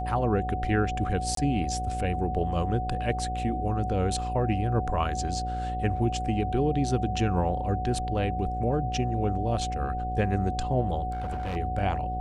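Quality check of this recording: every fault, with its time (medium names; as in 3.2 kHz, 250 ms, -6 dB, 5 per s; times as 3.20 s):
buzz 60 Hz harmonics 12 -33 dBFS
whine 740 Hz -31 dBFS
1.35–1.37 s: dropout 23 ms
11.11–11.57 s: clipped -28 dBFS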